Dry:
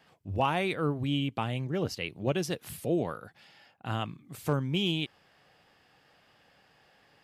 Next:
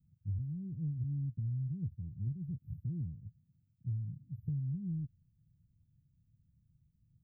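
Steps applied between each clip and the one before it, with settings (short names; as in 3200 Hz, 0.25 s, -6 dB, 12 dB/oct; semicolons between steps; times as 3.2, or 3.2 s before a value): inverse Chebyshev band-stop 750–9300 Hz, stop band 80 dB; compressor, threshold -42 dBFS, peak gain reduction 9.5 dB; gain +8 dB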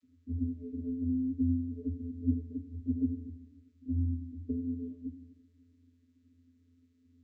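vocoder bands 32, square 86.1 Hz; fixed phaser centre 320 Hz, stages 4; reverb RT60 1.3 s, pre-delay 35 ms, DRR 12.5 dB; gain +8 dB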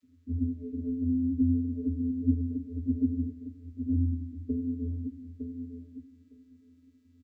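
feedback echo 0.909 s, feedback 15%, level -7.5 dB; gain +3.5 dB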